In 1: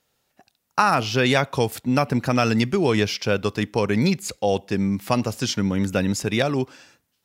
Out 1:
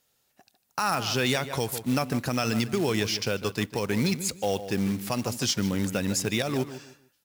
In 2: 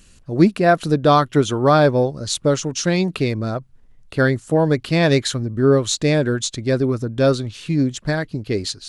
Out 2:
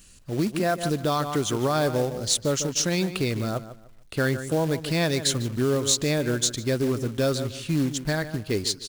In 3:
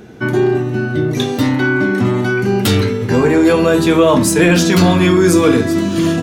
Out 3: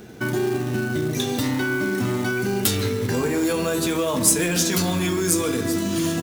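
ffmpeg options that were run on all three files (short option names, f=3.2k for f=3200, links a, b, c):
-filter_complex "[0:a]asplit=2[a][b];[b]adelay=150,lowpass=f=2.8k:p=1,volume=-13dB,asplit=2[c][d];[d]adelay=150,lowpass=f=2.8k:p=1,volume=0.27,asplit=2[e][f];[f]adelay=150,lowpass=f=2.8k:p=1,volume=0.27[g];[a][c][e][g]amix=inputs=4:normalize=0,acrossover=split=5800[h][i];[h]alimiter=limit=-11.5dB:level=0:latency=1:release=139[j];[j][i]amix=inputs=2:normalize=0,highshelf=f=4.3k:g=8,acrusher=bits=4:mode=log:mix=0:aa=0.000001,volume=-4.5dB"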